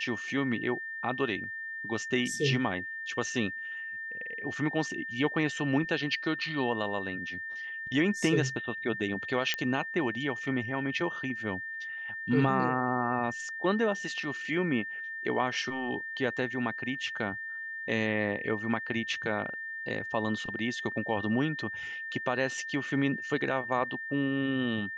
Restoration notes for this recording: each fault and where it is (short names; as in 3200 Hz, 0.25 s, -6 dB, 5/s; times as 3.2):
tone 1800 Hz -36 dBFS
9.54 pop -14 dBFS